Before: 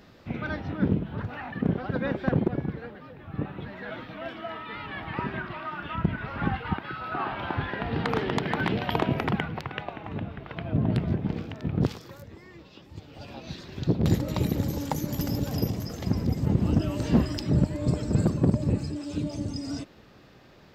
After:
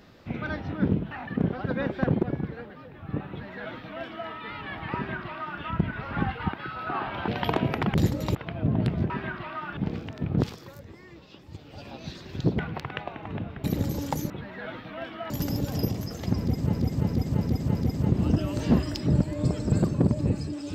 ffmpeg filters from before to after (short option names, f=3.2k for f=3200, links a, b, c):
-filter_complex "[0:a]asplit=15[a][b][c][d][e][f][g][h][i][j][k][l][m][n][o];[a]atrim=end=1.112[p];[b]atrim=start=1.358:end=7.532[q];[c]atrim=start=8.738:end=9.402[r];[d]atrim=start=14.018:end=14.432[s];[e]atrim=start=10.448:end=11.202[t];[f]atrim=start=5.198:end=5.872[u];[g]atrim=start=11.198:end=14.022[v];[h]atrim=start=9.398:end=10.452[w];[i]atrim=start=14.428:end=15.092[x];[j]atrim=start=3.538:end=4.542[y];[k]atrim=start=15.088:end=16.522[z];[l]atrim=start=16.178:end=16.522[aa];[m]atrim=start=16.178:end=16.522[ab];[n]atrim=start=16.178:end=16.522[ac];[o]atrim=start=16.178[ad];[p][q]acrossfade=d=0.004:c1=hsin:c2=hsin[ae];[ae][r]acrossfade=d=0.004:c1=hsin:c2=hsin[af];[af][s]acrossfade=d=0.004:c1=hsin:c2=hsin[ag];[ag][t]acrossfade=d=0.004:c1=hsin:c2=hsin[ah];[ah][u]acrossfade=d=0.004:c1=hsin:c2=hsin[ai];[ai][v]acrossfade=d=0.004:c1=hsin:c2=hsin[aj];[aj][w]acrossfade=d=0.004:c1=hsin:c2=hsin[ak];[ak][x]acrossfade=d=0.004:c1=hsin:c2=hsin[al];[al][y]acrossfade=d=0.004:c1=hsin:c2=hsin[am];[am][z]acrossfade=d=0.004:c1=hsin:c2=hsin[an];[an][aa]acrossfade=d=0.004:c1=hsin:c2=hsin[ao];[ao][ab]acrossfade=d=0.004:c1=hsin:c2=hsin[ap];[ap][ac]acrossfade=d=0.004:c1=hsin:c2=hsin[aq];[aq][ad]acrossfade=d=0.004:c1=hsin:c2=hsin"